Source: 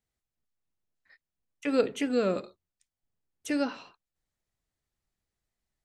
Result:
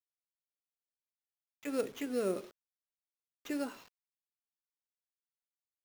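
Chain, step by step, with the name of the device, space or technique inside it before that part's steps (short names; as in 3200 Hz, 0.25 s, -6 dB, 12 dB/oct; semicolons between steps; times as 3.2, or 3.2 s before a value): 2.06–3.8 bell 380 Hz +9 dB 0.33 oct; early 8-bit sampler (sample-rate reducer 9500 Hz, jitter 0%; bit-crush 8-bit); gain -9 dB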